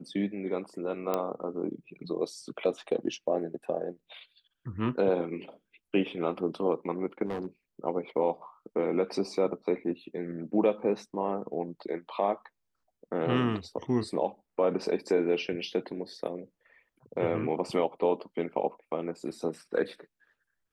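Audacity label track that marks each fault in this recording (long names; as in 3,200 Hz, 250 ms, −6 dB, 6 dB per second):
1.140000	1.140000	click −15 dBFS
7.250000	7.470000	clipping −29 dBFS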